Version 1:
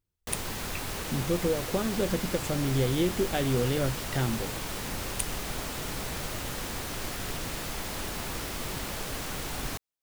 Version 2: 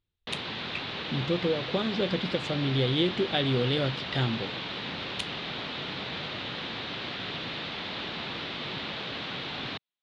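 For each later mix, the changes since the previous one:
background: add Chebyshev band-pass 150–3000 Hz, order 2; master: add synth low-pass 3800 Hz, resonance Q 3.8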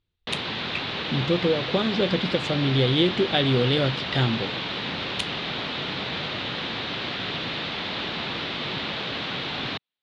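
speech +5.0 dB; background +5.5 dB

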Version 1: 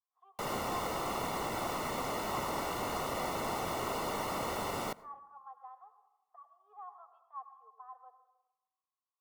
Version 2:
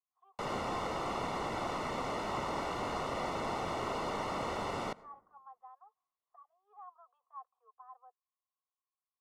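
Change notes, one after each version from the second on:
speech: send off; master: add air absorption 80 m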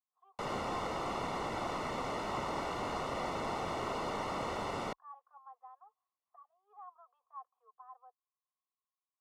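reverb: off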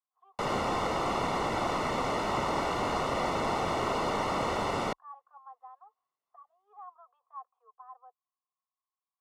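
speech +4.0 dB; background +7.0 dB

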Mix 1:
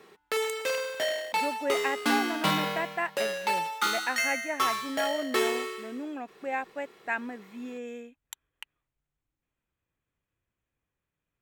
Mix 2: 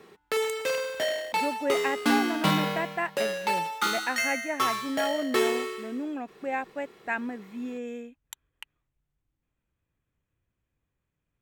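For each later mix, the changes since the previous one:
master: add low shelf 300 Hz +7.5 dB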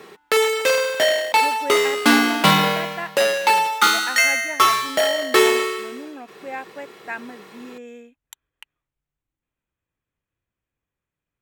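background +11.5 dB; master: add low shelf 300 Hz -7.5 dB

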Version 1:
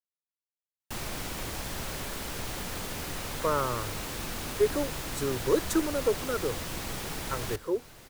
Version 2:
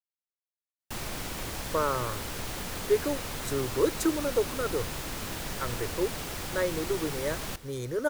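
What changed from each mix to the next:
speech: entry -1.70 s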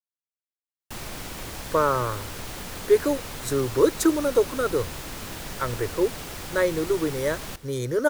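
speech +6.5 dB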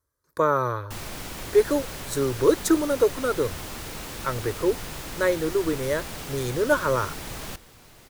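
speech: entry -1.35 s

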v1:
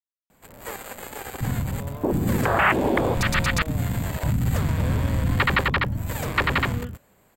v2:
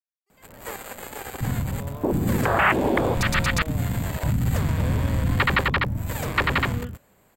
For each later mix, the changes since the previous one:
speech: entry -1.55 s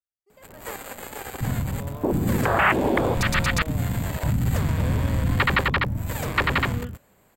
speech: remove HPF 1200 Hz 12 dB/oct

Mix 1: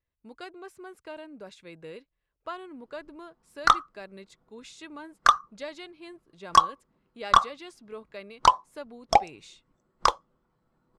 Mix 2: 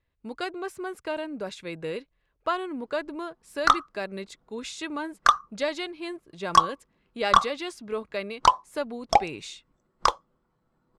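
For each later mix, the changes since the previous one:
speech +10.0 dB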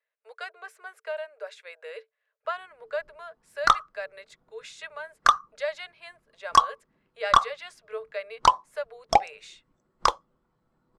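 speech: add rippled Chebyshev high-pass 430 Hz, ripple 9 dB

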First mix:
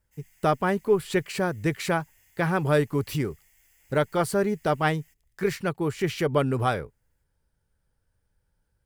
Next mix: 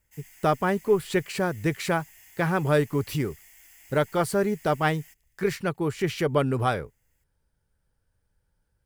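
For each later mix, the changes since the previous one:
background +9.5 dB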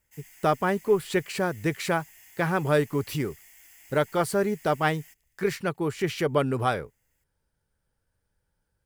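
speech: add low shelf 120 Hz -6 dB

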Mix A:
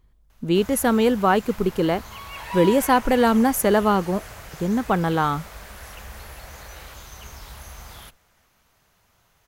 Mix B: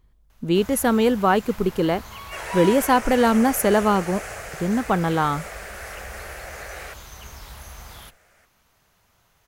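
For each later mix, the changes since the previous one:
second sound +10.0 dB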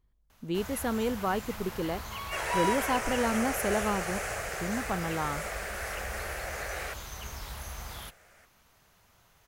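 speech -11.5 dB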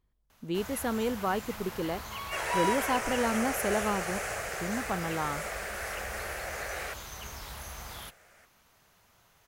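master: add low shelf 93 Hz -6 dB

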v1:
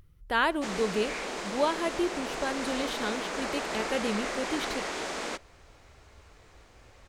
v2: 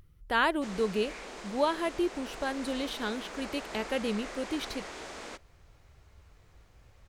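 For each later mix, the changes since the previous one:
background -8.5 dB; reverb: off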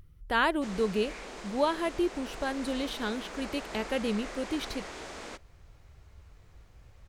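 master: add low shelf 180 Hz +4.5 dB

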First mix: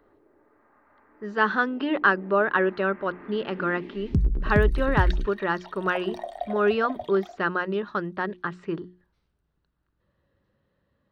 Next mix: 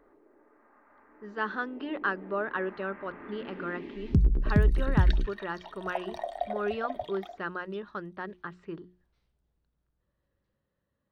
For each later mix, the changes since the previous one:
speech -9.5 dB; master: add high shelf 8600 Hz -4.5 dB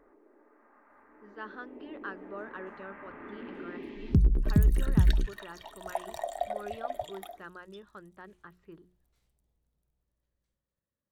speech -11.0 dB; second sound: remove polynomial smoothing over 15 samples

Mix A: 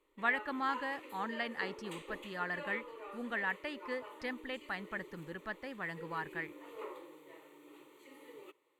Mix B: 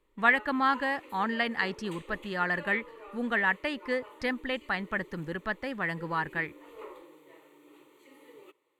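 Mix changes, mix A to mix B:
speech +9.0 dB; master: add low shelf 150 Hz +3.5 dB

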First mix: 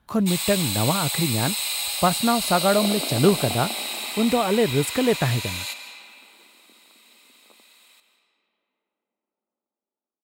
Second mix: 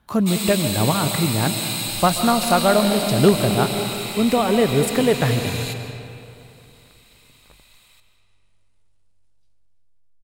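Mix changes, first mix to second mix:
speech: send on; second sound: remove Chebyshev band-pass 220–1300 Hz, order 4

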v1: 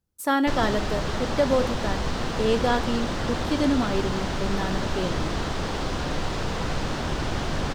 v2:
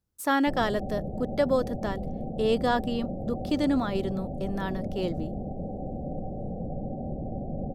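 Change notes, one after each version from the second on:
speech: send off; background: add rippled Chebyshev low-pass 790 Hz, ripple 9 dB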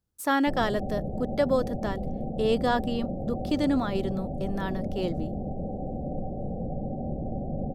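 background: send +8.0 dB

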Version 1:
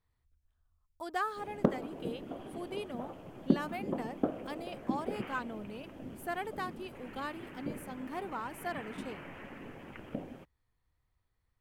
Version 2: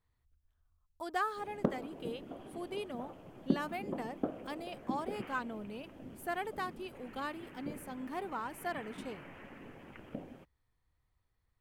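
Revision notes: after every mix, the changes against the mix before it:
background -4.0 dB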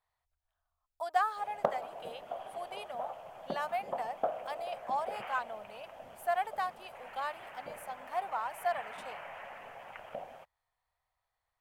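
background +5.0 dB; master: add resonant low shelf 460 Hz -14 dB, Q 3

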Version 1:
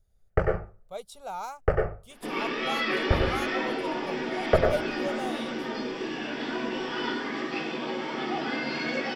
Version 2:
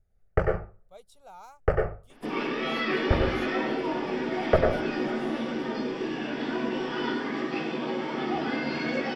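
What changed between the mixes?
speech -11.5 dB; second sound: add tilt -1.5 dB/oct

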